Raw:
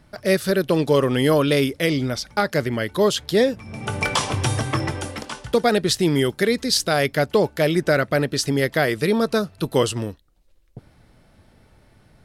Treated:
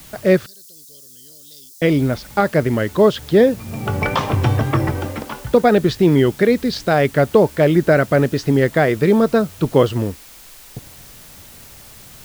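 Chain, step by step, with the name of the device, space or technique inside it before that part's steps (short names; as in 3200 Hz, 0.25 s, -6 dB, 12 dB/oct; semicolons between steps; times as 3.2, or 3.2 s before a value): cassette deck with a dirty head (tape spacing loss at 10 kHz 31 dB; wow and flutter; white noise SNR 26 dB); 0.46–1.82 inverse Chebyshev high-pass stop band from 2500 Hz, stop band 40 dB; gain +7 dB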